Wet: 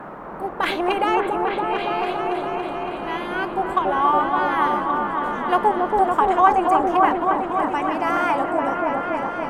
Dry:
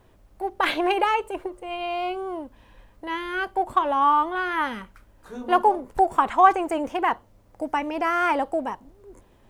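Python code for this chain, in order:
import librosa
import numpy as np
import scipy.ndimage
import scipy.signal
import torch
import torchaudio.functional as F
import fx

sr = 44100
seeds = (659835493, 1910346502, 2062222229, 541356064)

y = fx.dmg_noise_band(x, sr, seeds[0], low_hz=150.0, high_hz=1300.0, level_db=-36.0)
y = fx.echo_opening(y, sr, ms=281, hz=750, octaves=1, feedback_pct=70, wet_db=0)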